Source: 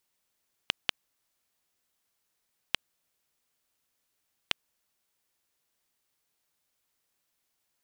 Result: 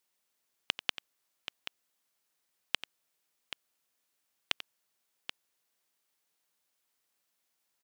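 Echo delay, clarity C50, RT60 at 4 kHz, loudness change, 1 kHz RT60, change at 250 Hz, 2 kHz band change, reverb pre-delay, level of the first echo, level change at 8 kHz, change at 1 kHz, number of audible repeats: 90 ms, none, none, -4.0 dB, none, -3.0 dB, -1.0 dB, none, -13.5 dB, -1.0 dB, -1.0 dB, 2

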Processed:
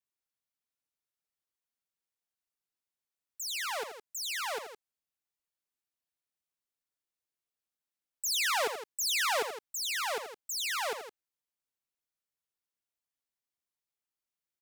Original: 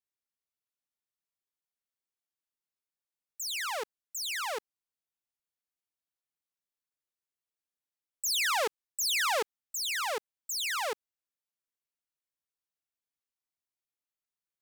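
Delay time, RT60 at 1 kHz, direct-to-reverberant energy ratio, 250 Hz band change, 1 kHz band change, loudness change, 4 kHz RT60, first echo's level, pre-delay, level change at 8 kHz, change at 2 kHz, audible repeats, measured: 82 ms, none, none, -1.0 dB, -1.0 dB, -1.0 dB, none, -9.5 dB, none, -1.0 dB, -1.0 dB, 2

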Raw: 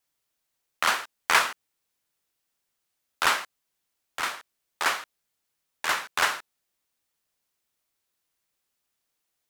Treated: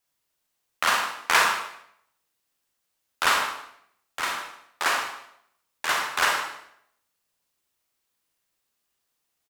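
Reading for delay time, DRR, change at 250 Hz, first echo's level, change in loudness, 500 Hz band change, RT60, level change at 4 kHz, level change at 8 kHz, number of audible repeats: 0.151 s, 1.0 dB, +2.5 dB, -15.0 dB, +1.5 dB, +2.5 dB, 0.70 s, +2.0 dB, +2.0 dB, 1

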